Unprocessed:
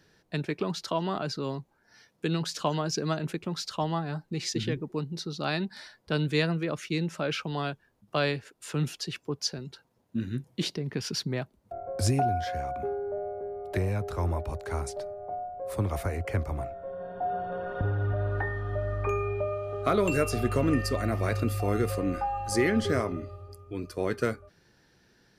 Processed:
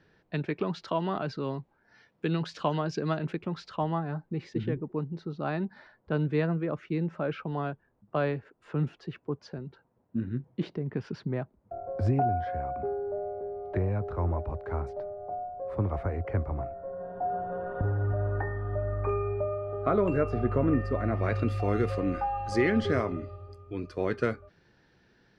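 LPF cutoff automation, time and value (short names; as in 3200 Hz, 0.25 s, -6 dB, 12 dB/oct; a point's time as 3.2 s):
3.26 s 2800 Hz
4.42 s 1400 Hz
20.93 s 1400 Hz
21.49 s 3600 Hz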